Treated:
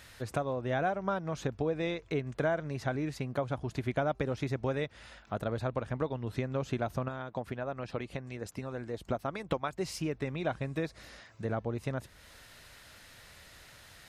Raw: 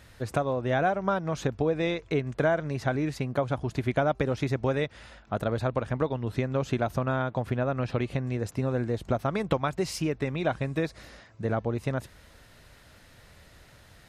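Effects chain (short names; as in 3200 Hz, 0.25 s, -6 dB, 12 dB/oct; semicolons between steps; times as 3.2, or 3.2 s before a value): 7.08–9.81 harmonic-percussive split harmonic -8 dB; mismatched tape noise reduction encoder only; gain -5.5 dB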